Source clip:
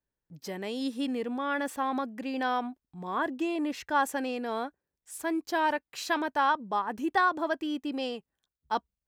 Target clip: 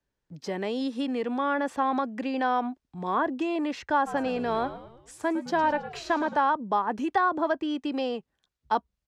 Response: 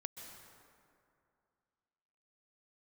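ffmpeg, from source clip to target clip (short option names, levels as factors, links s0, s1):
-filter_complex "[0:a]acrossover=split=160|640|1300[s0][s1][s2][s3];[s0]acompressor=threshold=0.00126:ratio=4[s4];[s1]acompressor=threshold=0.0158:ratio=4[s5];[s2]acompressor=threshold=0.0282:ratio=4[s6];[s3]acompressor=threshold=0.00447:ratio=4[s7];[s4][s5][s6][s7]amix=inputs=4:normalize=0,lowpass=6300,asplit=3[s8][s9][s10];[s8]afade=t=out:st=4.06:d=0.02[s11];[s9]asplit=6[s12][s13][s14][s15][s16][s17];[s13]adelay=108,afreqshift=-78,volume=0.224[s18];[s14]adelay=216,afreqshift=-156,volume=0.112[s19];[s15]adelay=324,afreqshift=-234,volume=0.0562[s20];[s16]adelay=432,afreqshift=-312,volume=0.0279[s21];[s17]adelay=540,afreqshift=-390,volume=0.014[s22];[s12][s18][s19][s20][s21][s22]amix=inputs=6:normalize=0,afade=t=in:st=4.06:d=0.02,afade=t=out:st=6.35:d=0.02[s23];[s10]afade=t=in:st=6.35:d=0.02[s24];[s11][s23][s24]amix=inputs=3:normalize=0,volume=2.24"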